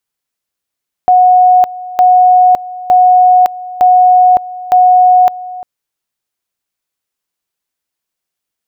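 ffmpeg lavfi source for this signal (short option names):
-f lavfi -i "aevalsrc='pow(10,(-3-18.5*gte(mod(t,0.91),0.56))/20)*sin(2*PI*731*t)':d=4.55:s=44100"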